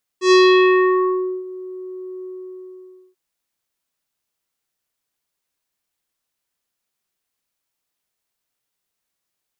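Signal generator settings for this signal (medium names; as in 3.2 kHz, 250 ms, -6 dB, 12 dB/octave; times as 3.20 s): synth note square F#4 24 dB/octave, low-pass 640 Hz, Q 1.4, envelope 3.5 oct, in 1.14 s, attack 106 ms, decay 1.12 s, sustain -23 dB, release 0.91 s, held 2.03 s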